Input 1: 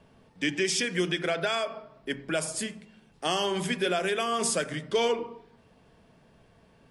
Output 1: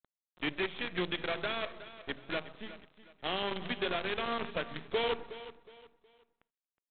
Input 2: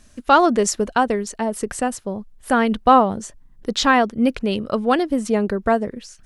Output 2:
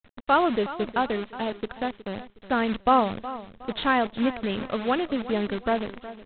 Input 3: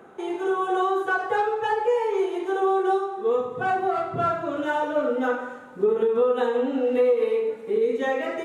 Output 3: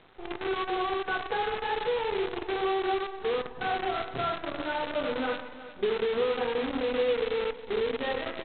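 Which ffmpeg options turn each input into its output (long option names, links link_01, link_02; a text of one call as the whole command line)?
ffmpeg -i in.wav -af "aresample=8000,acrusher=bits=5:dc=4:mix=0:aa=0.000001,aresample=44100,aecho=1:1:366|732|1098:0.178|0.0587|0.0194,volume=-7dB" out.wav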